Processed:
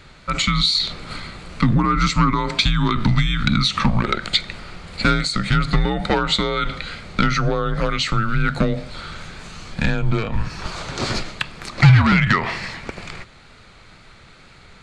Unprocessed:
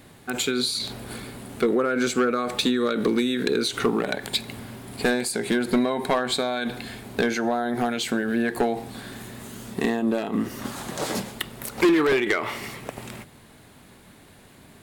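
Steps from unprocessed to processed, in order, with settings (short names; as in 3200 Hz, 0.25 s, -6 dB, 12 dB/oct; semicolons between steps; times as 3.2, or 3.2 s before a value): speaker cabinet 180–7300 Hz, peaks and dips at 200 Hz +7 dB, 340 Hz +6 dB, 1500 Hz +7 dB, 2500 Hz +8 dB, 4600 Hz +9 dB; frequency shift -210 Hz; wow and flutter 28 cents; gain +2.5 dB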